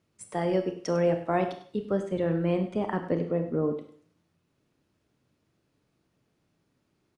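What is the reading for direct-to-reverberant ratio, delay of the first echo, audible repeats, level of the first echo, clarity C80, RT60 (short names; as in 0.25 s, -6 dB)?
6.5 dB, 0.1 s, 1, -14.5 dB, 11.5 dB, 0.50 s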